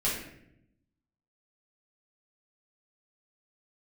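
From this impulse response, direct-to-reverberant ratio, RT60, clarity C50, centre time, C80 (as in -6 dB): -8.0 dB, 0.75 s, 3.0 dB, 48 ms, 6.5 dB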